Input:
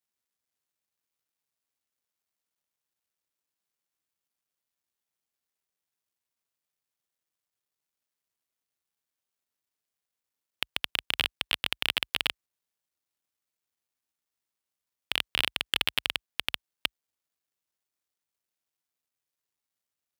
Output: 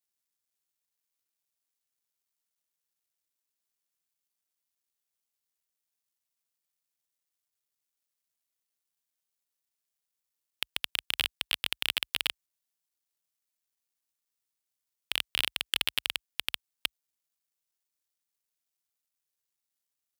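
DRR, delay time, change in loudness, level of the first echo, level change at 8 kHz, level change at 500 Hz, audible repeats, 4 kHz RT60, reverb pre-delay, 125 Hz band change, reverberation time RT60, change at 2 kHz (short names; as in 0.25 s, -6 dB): none, none, -1.5 dB, none, +2.0 dB, -6.0 dB, none, none, none, -6.0 dB, none, -3.0 dB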